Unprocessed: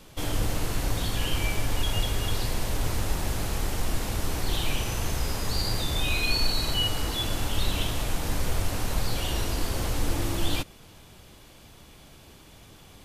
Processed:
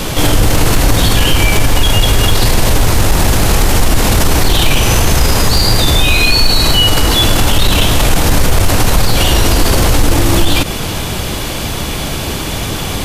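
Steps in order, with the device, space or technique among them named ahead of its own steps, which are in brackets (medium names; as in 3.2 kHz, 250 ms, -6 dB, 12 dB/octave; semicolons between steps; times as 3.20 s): loud club master (compression 2.5:1, threshold -26 dBFS, peak gain reduction 6 dB; hard clipper -21.5 dBFS, distortion -26 dB; loudness maximiser +33 dB); trim -1 dB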